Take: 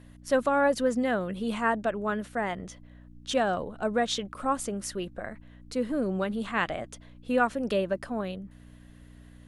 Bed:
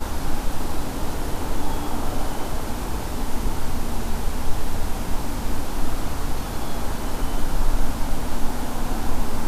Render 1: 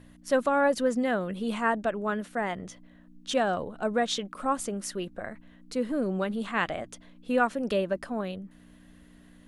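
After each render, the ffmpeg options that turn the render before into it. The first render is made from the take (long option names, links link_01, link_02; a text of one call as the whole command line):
ffmpeg -i in.wav -af "bandreject=frequency=60:width_type=h:width=4,bandreject=frequency=120:width_type=h:width=4" out.wav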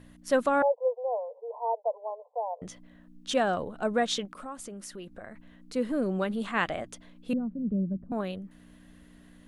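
ffmpeg -i in.wav -filter_complex "[0:a]asettb=1/sr,asplit=3[link_01][link_02][link_03];[link_01]atrim=end=0.624[link_04];[link_02]atrim=start=0.62:end=2.62,asetpts=PTS-STARTPTS,afade=type=in:duration=0.004:curve=qsin,afade=type=out:start_time=1.996:duration=0.004:curve=qsin,asuperpass=centerf=680:order=20:qfactor=1.2[link_05];[link_03]atrim=start=2.616[link_06];[link_04][link_05]acrossfade=duration=0.004:curve1=hsin:curve2=qsin[link_07];[link_07][link_06]acrossfade=duration=0.004:curve1=qsin:curve2=hsin,asettb=1/sr,asplit=3[link_08][link_09][link_10];[link_08]atrim=end=4.254[link_11];[link_09]atrim=start=4.25:end=5.74,asetpts=PTS-STARTPTS,afade=type=in:duration=0.004:curve=qsin,afade=type=out:start_time=1.486:duration=0.004:curve=qsin,acompressor=threshold=-42dB:ratio=2.5:attack=3.2:release=140:knee=1:detection=peak[link_12];[link_10]atrim=start=5.736[link_13];[link_11][link_12]acrossfade=duration=0.004:curve1=hsin:curve2=qsin[link_14];[link_14][link_13]acrossfade=duration=0.004:curve1=qsin:curve2=hsin,asettb=1/sr,asplit=3[link_15][link_16][link_17];[link_15]atrim=end=7.334[link_18];[link_16]atrim=start=7.33:end=8.12,asetpts=PTS-STARTPTS,afade=type=in:duration=0.004:curve=qsin,afade=type=out:start_time=0.786:duration=0.004:curve=qsin,lowpass=frequency=190:width_type=q:width=2.2[link_19];[link_17]atrim=start=8.116[link_20];[link_18][link_19]acrossfade=duration=0.004:curve1=hsin:curve2=qsin[link_21];[link_21][link_20]acrossfade=duration=0.004:curve1=qsin:curve2=hsin" out.wav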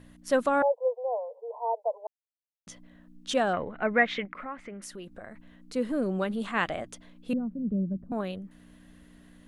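ffmpeg -i in.wav -filter_complex "[0:a]asettb=1/sr,asplit=3[link_01][link_02][link_03];[link_01]atrim=end=3.534[link_04];[link_02]atrim=start=3.53:end=4.82,asetpts=PTS-STARTPTS,afade=type=in:duration=0.004:curve=qsin,afade=type=out:start_time=1.286:duration=0.004:curve=qsin,lowpass=frequency=2100:width_type=q:width=6.8[link_05];[link_03]atrim=start=4.816[link_06];[link_04][link_05]acrossfade=duration=0.004:curve1=hsin:curve2=qsin[link_07];[link_07][link_06]acrossfade=duration=0.004:curve1=qsin:curve2=hsin,asplit=3[link_08][link_09][link_10];[link_08]atrim=end=2.07,asetpts=PTS-STARTPTS,afade=type=out:start_time=2.066:duration=0.004:curve=hsin[link_11];[link_09]atrim=start=2.07:end=2.67,asetpts=PTS-STARTPTS,volume=0[link_12];[link_10]atrim=start=2.67,asetpts=PTS-STARTPTS,afade=type=in:duration=0.004:curve=hsin[link_13];[link_11][link_12][link_13]concat=n=3:v=0:a=1" out.wav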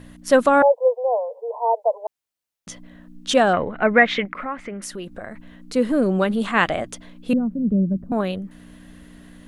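ffmpeg -i in.wav -af "volume=9.5dB,alimiter=limit=-3dB:level=0:latency=1" out.wav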